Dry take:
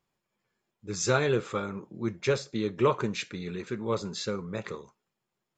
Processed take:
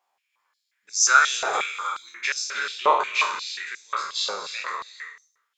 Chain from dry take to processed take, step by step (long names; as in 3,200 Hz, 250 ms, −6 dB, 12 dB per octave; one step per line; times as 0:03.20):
peak hold with a decay on every bin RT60 0.60 s
0:01.53–0:01.95: spectral tilt +4 dB per octave
reverb whose tail is shaped and stops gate 350 ms rising, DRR 5 dB
high-pass on a step sequencer 5.6 Hz 780–5,700 Hz
level +1.5 dB